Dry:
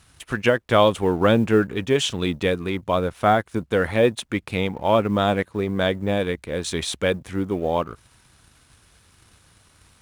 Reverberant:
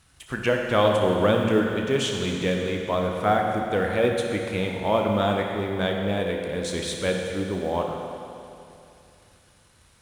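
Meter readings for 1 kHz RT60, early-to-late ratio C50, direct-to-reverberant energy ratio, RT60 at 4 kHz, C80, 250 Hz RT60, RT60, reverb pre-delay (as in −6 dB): 2.7 s, 2.0 dB, 1.0 dB, 2.6 s, 3.0 dB, 2.7 s, 2.7 s, 17 ms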